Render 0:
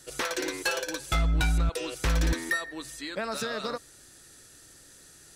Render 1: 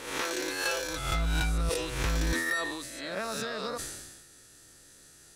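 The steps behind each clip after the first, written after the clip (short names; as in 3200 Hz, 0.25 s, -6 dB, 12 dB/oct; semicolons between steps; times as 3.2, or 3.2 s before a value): spectral swells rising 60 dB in 0.76 s; sustainer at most 41 dB/s; gain -4.5 dB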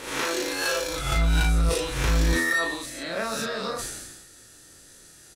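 doubler 36 ms -3 dB; gain +3 dB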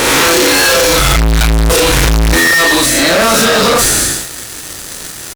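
fuzz box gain 42 dB, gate -49 dBFS; gain +5 dB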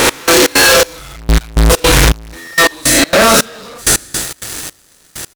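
step gate "x..xx.xxx....." 163 bpm -24 dB; gain +2 dB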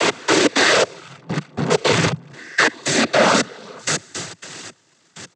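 high shelf 5400 Hz -6.5 dB; noise vocoder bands 16; gain -5 dB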